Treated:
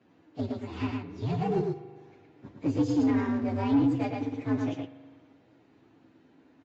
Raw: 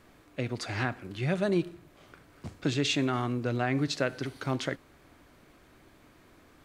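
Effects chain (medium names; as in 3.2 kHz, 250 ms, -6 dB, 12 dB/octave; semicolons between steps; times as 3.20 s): frequency axis rescaled in octaves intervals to 125%; peaking EQ 280 Hz +11 dB 0.23 oct; in parallel at -11.5 dB: small samples zeroed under -27.5 dBFS; on the sum: high-pass 96 Hz 24 dB/octave; on a send: delay 112 ms -4 dB; on the sum: spring tank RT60 1.8 s, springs 40 ms, chirp 50 ms, DRR 14.5 dB; saturation -17 dBFS, distortion -16 dB; low-pass 1.2 kHz 6 dB/octave; Vorbis 48 kbps 16 kHz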